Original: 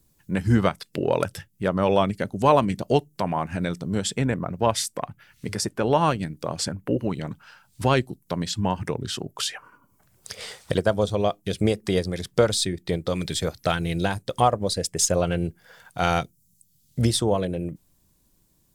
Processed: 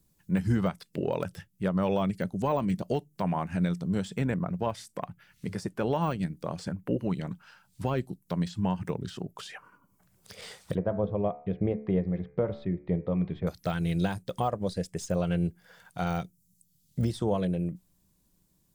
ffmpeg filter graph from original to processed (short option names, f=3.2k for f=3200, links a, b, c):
-filter_complex "[0:a]asettb=1/sr,asplit=3[a][b][c];[a]atrim=end=10.754[d];[b]atrim=start=10.75:end=13.47,asetpts=PTS-STARTPTS,afade=t=in:d=0.004:c=qsin,afade=t=out:st=2.716:d=0.004:c=qsin,lowpass=f=1.9k:w=0.5412,lowpass=f=1.9k:w=1.3066,equalizer=f=1.5k:t=o:w=0.65:g=-10,bandreject=f=72.14:t=h:w=4,bandreject=f=144.28:t=h:w=4,bandreject=f=216.42:t=h:w=4,bandreject=f=288.56:t=h:w=4,bandreject=f=360.7:t=h:w=4,bandreject=f=432.84:t=h:w=4,bandreject=f=504.98:t=h:w=4,bandreject=f=577.12:t=h:w=4,bandreject=f=649.26:t=h:w=4,bandreject=f=721.4:t=h:w=4,bandreject=f=793.54:t=h:w=4,bandreject=f=865.68:t=h:w=4,bandreject=f=937.82:t=h:w=4,bandreject=f=1.00996k:t=h:w=4,bandreject=f=1.0821k:t=h:w=4,bandreject=f=1.15424k:t=h:w=4,bandreject=f=1.22638k:t=h:w=4,bandreject=f=1.29852k:t=h:w=4,bandreject=f=1.37066k:t=h:w=4,bandreject=f=1.4428k:t=h:w=4,bandreject=f=1.51494k:t=h:w=4,bandreject=f=1.58708k:t=h:w=4,bandreject=f=1.65922k:t=h:w=4,bandreject=f=1.73136k:t=h:w=4,bandreject=f=1.8035k:t=h:w=4,bandreject=f=1.87564k:t=h:w=4,bandreject=f=1.94778k:t=h:w=4,bandreject=f=2.01992k:t=h:w=4,bandreject=f=2.09206k:t=h:w=4,bandreject=f=2.1642k:t=h:w=4,bandreject=f=2.23634k:t=h:w=4,bandreject=f=2.30848k:t=h:w=4,bandreject=f=2.38062k:t=h:w=4,bandreject=f=2.45276k:t=h:w=4[e];[c]atrim=start=13.466[f];[d][e]acrossfade=d=0.004:c1=hsin:c2=qsin[g];[g][f]acrossfade=d=0.004:c1=qsin:c2=hsin,deesser=0.9,equalizer=f=180:w=5.7:g=8.5,alimiter=limit=-11dB:level=0:latency=1:release=181,volume=-5.5dB"